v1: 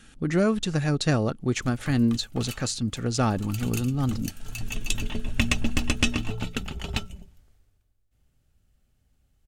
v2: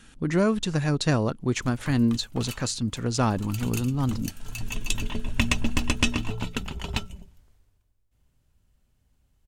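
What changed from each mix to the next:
master: remove Butterworth band-stop 990 Hz, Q 7.1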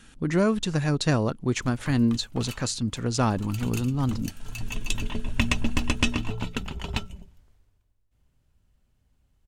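background: add treble shelf 5.7 kHz -5 dB

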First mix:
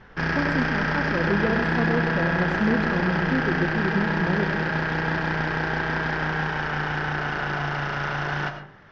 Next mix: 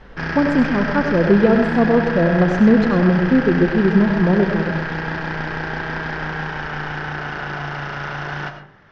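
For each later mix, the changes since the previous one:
speech +11.0 dB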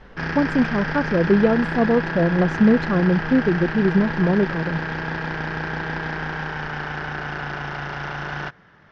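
reverb: off

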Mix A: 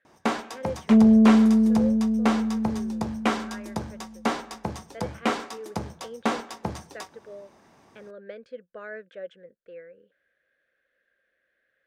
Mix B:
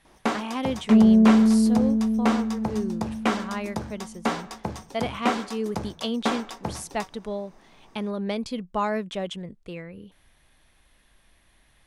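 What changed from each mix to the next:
speech: remove two resonant band-passes 910 Hz, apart 1.6 oct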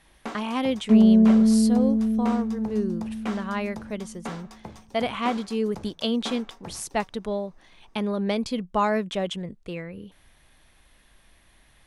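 speech +3.0 dB; first sound -10.0 dB

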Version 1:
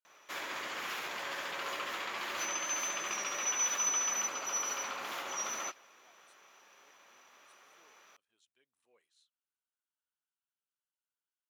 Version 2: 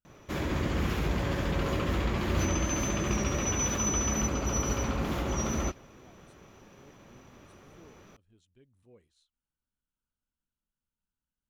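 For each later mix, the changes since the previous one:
master: remove high-pass 970 Hz 12 dB/octave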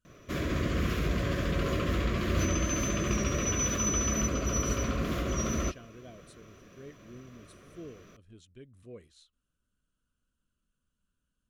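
speech +11.0 dB; master: add Butterworth band-stop 850 Hz, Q 3

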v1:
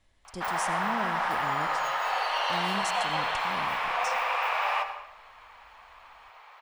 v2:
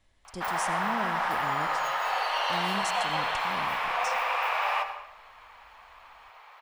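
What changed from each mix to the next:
background: add peaking EQ 13 kHz +6.5 dB 0.34 oct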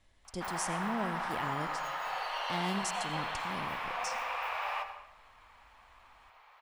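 background -8.0 dB

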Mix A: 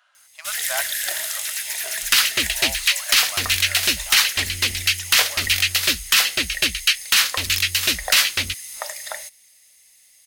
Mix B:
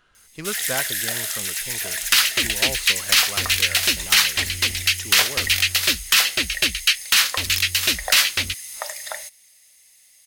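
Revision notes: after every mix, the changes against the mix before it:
speech: remove brick-wall FIR high-pass 550 Hz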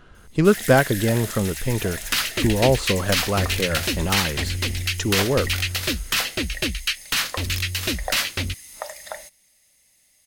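speech +11.5 dB; master: add tilt shelf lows +7.5 dB, about 780 Hz

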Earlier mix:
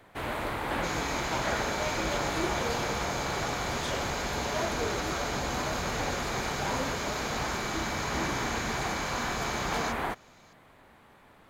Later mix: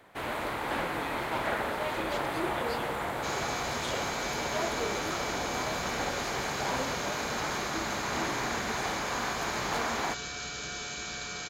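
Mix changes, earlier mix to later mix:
second sound: entry +2.40 s; master: add bass shelf 130 Hz -9 dB

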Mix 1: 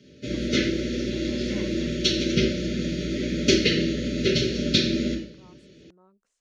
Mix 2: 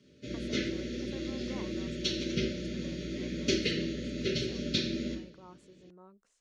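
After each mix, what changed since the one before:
speech +3.5 dB; background -9.5 dB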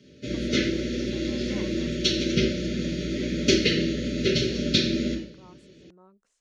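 background +8.5 dB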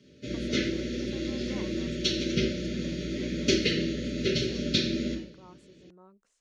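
background -4.0 dB

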